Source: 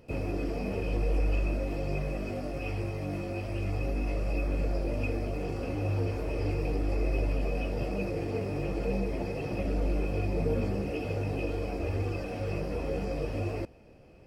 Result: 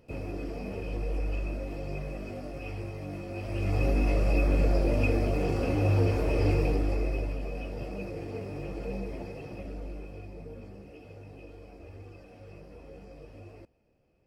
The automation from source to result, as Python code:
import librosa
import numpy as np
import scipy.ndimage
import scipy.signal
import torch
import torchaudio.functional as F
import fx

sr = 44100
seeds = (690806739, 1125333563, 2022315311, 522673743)

y = fx.gain(x, sr, db=fx.line((3.26, -4.0), (3.82, 5.5), (6.56, 5.5), (7.39, -5.0), (9.12, -5.0), (10.51, -15.5)))